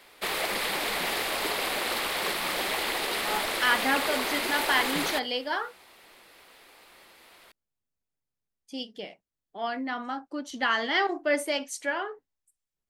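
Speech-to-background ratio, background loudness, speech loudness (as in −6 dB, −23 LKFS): −1.0 dB, −28.0 LKFS, −29.0 LKFS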